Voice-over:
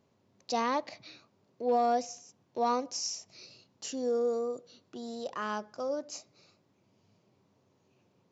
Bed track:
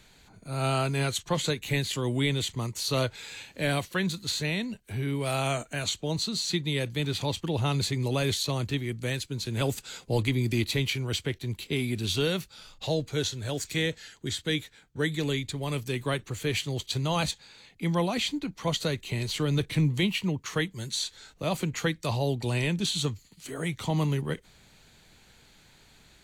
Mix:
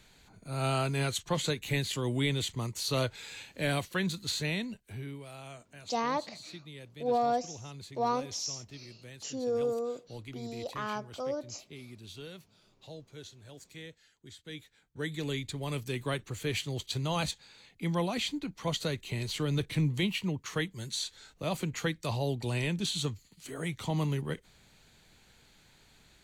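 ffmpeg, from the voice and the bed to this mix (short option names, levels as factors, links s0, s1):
-filter_complex "[0:a]adelay=5400,volume=0.891[s0];[1:a]volume=3.76,afade=t=out:st=4.54:d=0.74:silence=0.16788,afade=t=in:st=14.42:d=1.1:silence=0.188365[s1];[s0][s1]amix=inputs=2:normalize=0"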